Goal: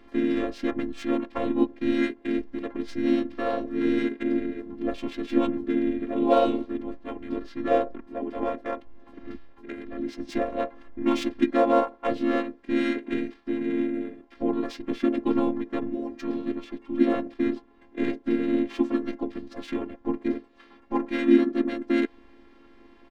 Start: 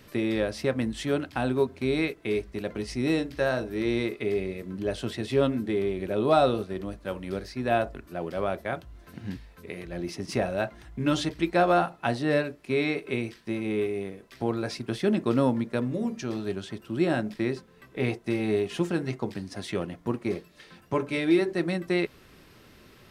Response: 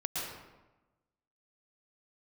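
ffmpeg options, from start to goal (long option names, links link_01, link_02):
-filter_complex "[0:a]afftfilt=real='hypot(re,im)*cos(PI*b)':imag='0':win_size=512:overlap=0.75,adynamicsmooth=sensitivity=4.5:basefreq=3100,equalizer=frequency=450:width=5.1:gain=12,asplit=4[link_01][link_02][link_03][link_04];[link_02]asetrate=29433,aresample=44100,atempo=1.49831,volume=-7dB[link_05];[link_03]asetrate=33038,aresample=44100,atempo=1.33484,volume=-12dB[link_06];[link_04]asetrate=35002,aresample=44100,atempo=1.25992,volume=-2dB[link_07];[link_01][link_05][link_06][link_07]amix=inputs=4:normalize=0"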